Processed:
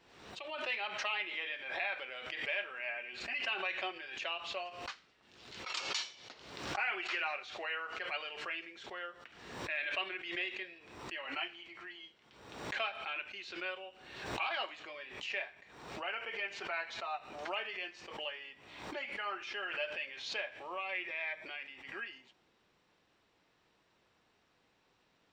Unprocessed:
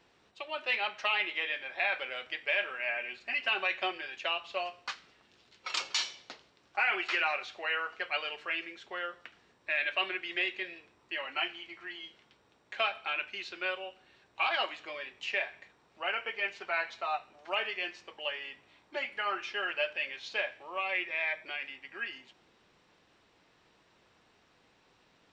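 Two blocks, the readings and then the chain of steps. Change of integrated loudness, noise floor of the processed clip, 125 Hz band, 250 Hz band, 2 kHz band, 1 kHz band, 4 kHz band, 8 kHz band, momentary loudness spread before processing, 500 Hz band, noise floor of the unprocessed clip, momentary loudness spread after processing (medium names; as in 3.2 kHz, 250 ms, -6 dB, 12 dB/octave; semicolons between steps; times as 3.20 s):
-5.5 dB, -73 dBFS, no reading, -1.0 dB, -5.5 dB, -5.0 dB, -5.0 dB, -3.5 dB, 13 LU, -5.0 dB, -67 dBFS, 13 LU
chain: swell ahead of each attack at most 57 dB/s; trim -6.5 dB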